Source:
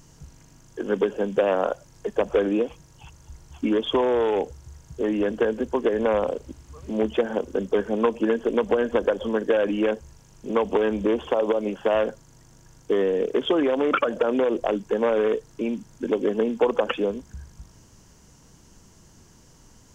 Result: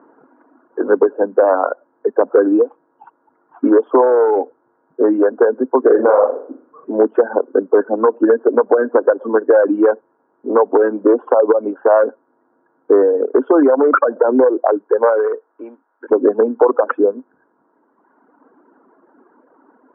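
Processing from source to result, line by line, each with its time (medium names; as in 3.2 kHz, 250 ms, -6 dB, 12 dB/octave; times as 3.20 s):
5.82–6.85 s: flutter echo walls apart 7 m, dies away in 0.56 s
14.47–16.10 s: high-pass 240 Hz -> 1 kHz
whole clip: reverb removal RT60 1.7 s; Chebyshev band-pass 260–1500 Hz, order 4; loudness maximiser +13.5 dB; trim -1 dB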